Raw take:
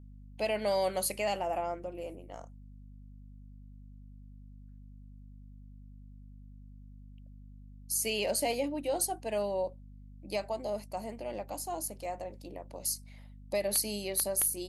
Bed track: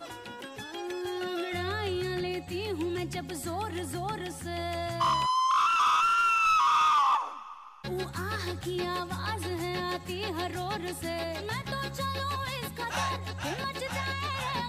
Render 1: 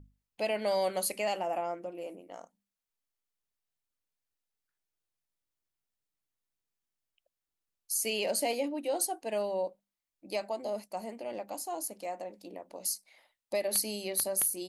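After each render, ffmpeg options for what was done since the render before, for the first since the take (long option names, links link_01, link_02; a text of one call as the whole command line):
ffmpeg -i in.wav -af "bandreject=frequency=50:width_type=h:width=6,bandreject=frequency=100:width_type=h:width=6,bandreject=frequency=150:width_type=h:width=6,bandreject=frequency=200:width_type=h:width=6,bandreject=frequency=250:width_type=h:width=6" out.wav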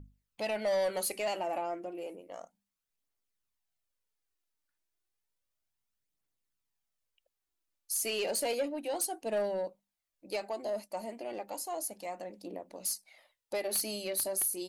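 ffmpeg -i in.wav -af "aphaser=in_gain=1:out_gain=1:delay=3.5:decay=0.38:speed=0.32:type=triangular,asoftclip=type=tanh:threshold=-25dB" out.wav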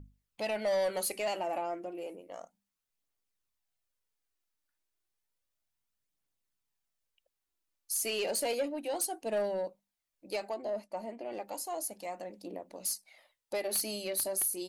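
ffmpeg -i in.wav -filter_complex "[0:a]asettb=1/sr,asplit=3[link_01][link_02][link_03];[link_01]atrim=end=10.544[link_04];[link_02]atrim=start=10.54:end=11.32,asetpts=PTS-STARTPTS,afade=type=in:duration=0.004:curve=qsin,afade=type=out:start_time=0.776:duration=0.004:curve=qsin,lowpass=frequency=2200:poles=1[link_05];[link_03]atrim=start=11.316[link_06];[link_04][link_05]acrossfade=duration=0.004:curve1=hsin:curve2=qsin[link_07];[link_07][link_06]acrossfade=duration=0.004:curve1=qsin:curve2=hsin" out.wav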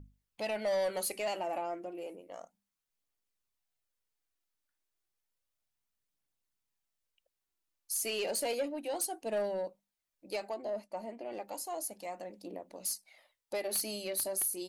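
ffmpeg -i in.wav -af "volume=-1.5dB" out.wav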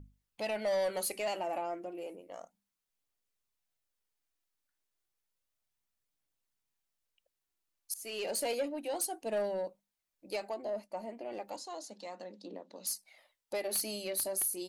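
ffmpeg -i in.wav -filter_complex "[0:a]asettb=1/sr,asplit=3[link_01][link_02][link_03];[link_01]atrim=end=11.564[link_04];[link_02]atrim=start=11.56:end=12.87,asetpts=PTS-STARTPTS,afade=type=in:duration=0.004:curve=qsin,afade=type=out:start_time=1.306:duration=0.004:curve=qsin,highpass=frequency=190:width=0.5412,highpass=frequency=190:width=1.3066,equalizer=frequency=210:width_type=q:width=4:gain=3,equalizer=frequency=330:width_type=q:width=4:gain=-3,equalizer=frequency=690:width_type=q:width=4:gain=-6,equalizer=frequency=2300:width_type=q:width=4:gain=-6,equalizer=frequency=3900:width_type=q:width=4:gain=8,lowpass=frequency=6900:width=0.5412,lowpass=frequency=6900:width=1.3066[link_05];[link_03]atrim=start=12.866[link_06];[link_04][link_05]acrossfade=duration=0.004:curve1=hsin:curve2=qsin[link_07];[link_07][link_06]acrossfade=duration=0.004:curve1=qsin:curve2=hsin,asplit=2[link_08][link_09];[link_08]atrim=end=7.94,asetpts=PTS-STARTPTS,afade=type=out:start_time=7.936:duration=0.004:curve=hsin:silence=0.0944061[link_10];[link_09]atrim=start=7.94,asetpts=PTS-STARTPTS,afade=type=in:duration=0.56:curve=qsin:silence=0.0944061[link_11];[link_10][link_11]concat=n=2:v=0:a=1" out.wav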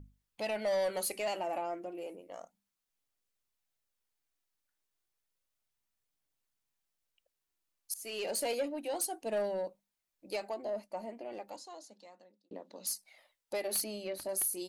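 ffmpeg -i in.wav -filter_complex "[0:a]asettb=1/sr,asplit=3[link_01][link_02][link_03];[link_01]atrim=end=13.844[link_04];[link_02]atrim=start=13.84:end=14.29,asetpts=PTS-STARTPTS,afade=type=in:duration=0.004:curve=qsin,afade=type=out:start_time=0.446:duration=0.004:curve=qsin,aemphasis=mode=reproduction:type=75kf[link_05];[link_03]atrim=start=14.286[link_06];[link_04][link_05]acrossfade=duration=0.004:curve1=hsin:curve2=qsin[link_07];[link_07][link_06]acrossfade=duration=0.004:curve1=qsin:curve2=hsin,asplit=2[link_08][link_09];[link_08]atrim=end=12.51,asetpts=PTS-STARTPTS,afade=type=out:start_time=11.03:duration=1.48[link_10];[link_09]atrim=start=12.51,asetpts=PTS-STARTPTS,afade=type=in:duration=0.004:curve=hsin[link_11];[link_10][link_11]concat=n=2:v=0:a=1" out.wav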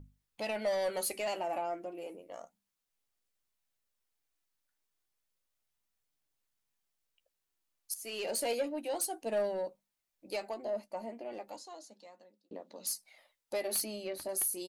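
ffmpeg -i in.wav -filter_complex "[0:a]asplit=2[link_01][link_02];[link_02]adelay=13,volume=-12dB[link_03];[link_01][link_03]amix=inputs=2:normalize=0" out.wav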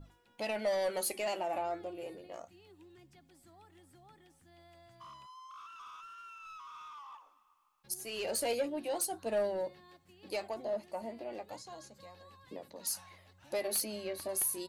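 ffmpeg -i in.wav -i bed.wav -filter_complex "[1:a]volume=-26dB[link_01];[0:a][link_01]amix=inputs=2:normalize=0" out.wav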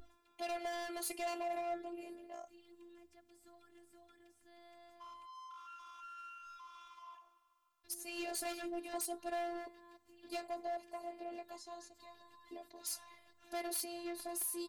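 ffmpeg -i in.wav -af "asoftclip=type=hard:threshold=-33dB,afftfilt=real='hypot(re,im)*cos(PI*b)':imag='0':win_size=512:overlap=0.75" out.wav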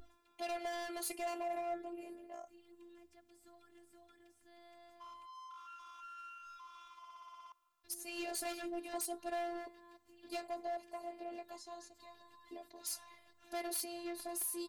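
ffmpeg -i in.wav -filter_complex "[0:a]asettb=1/sr,asplit=3[link_01][link_02][link_03];[link_01]atrim=end=1.154[link_04];[link_02]atrim=start=1.15:end=2.8,asetpts=PTS-STARTPTS,afade=type=in:duration=0.004:curve=qsin,afade=type=out:start_time=1.646:duration=0.004:curve=qsin,equalizer=frequency=4000:width_type=o:width=1.2:gain=-5[link_05];[link_03]atrim=start=2.796[link_06];[link_04][link_05]acrossfade=duration=0.004:curve1=hsin:curve2=qsin[link_07];[link_07][link_06]acrossfade=duration=0.004:curve1=qsin:curve2=hsin,asplit=10[link_08][link_09][link_10][link_11][link_12][link_13][link_14][link_15][link_16][link_17];[link_08]atrim=end=7.042[link_18];[link_09]atrim=start=6.978:end=7.042[link_19];[link_10]atrim=start=6.978:end=7.042[link_20];[link_11]atrim=start=6.978:end=7.042[link_21];[link_12]atrim=start=6.978:end=7.042[link_22];[link_13]atrim=start=6.978:end=7.042[link_23];[link_14]atrim=start=6.978:end=7.042[link_24];[link_15]atrim=start=6.978:end=7.042[link_25];[link_16]atrim=start=6.978:end=7.042[link_26];[link_17]atrim=start=7.518[link_27];[link_18][link_19]acrossfade=duration=0.004:curve1=hsin:curve2=hsin[link_28];[link_28][link_20]acrossfade=duration=0.004:curve1=hsin:curve2=hsin[link_29];[link_29][link_21]acrossfade=duration=0.004:curve1=hsin:curve2=hsin[link_30];[link_30][link_22]acrossfade=duration=0.004:curve1=hsin:curve2=hsin[link_31];[link_31][link_23]acrossfade=duration=0.004:curve1=hsin:curve2=hsin[link_32];[link_32][link_24]acrossfade=duration=0.004:curve1=hsin:curve2=hsin[link_33];[link_33][link_25]acrossfade=duration=0.004:curve1=hsin:curve2=hsin[link_34];[link_34][link_26]acrossfade=duration=0.004:curve1=hsin:curve2=hsin[link_35];[link_35][link_27]acrossfade=duration=0.004:curve1=hsin:curve2=hsin" out.wav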